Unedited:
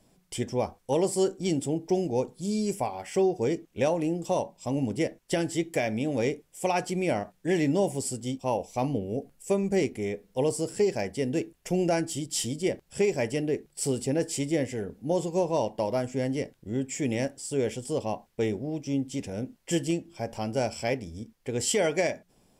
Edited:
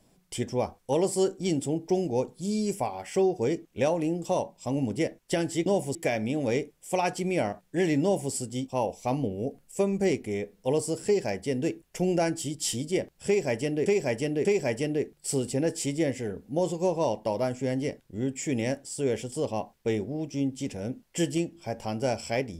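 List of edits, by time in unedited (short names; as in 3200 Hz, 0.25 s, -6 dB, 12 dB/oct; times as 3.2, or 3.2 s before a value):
7.74–8.03 copy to 5.66
12.98–13.57 loop, 3 plays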